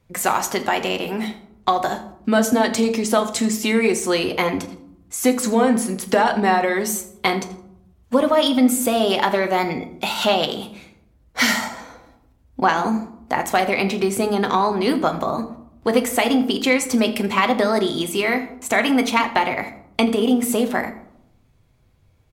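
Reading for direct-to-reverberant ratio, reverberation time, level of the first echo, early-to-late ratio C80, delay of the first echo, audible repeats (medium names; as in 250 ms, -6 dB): 6.0 dB, 0.75 s, -18.5 dB, 15.0 dB, 82 ms, 1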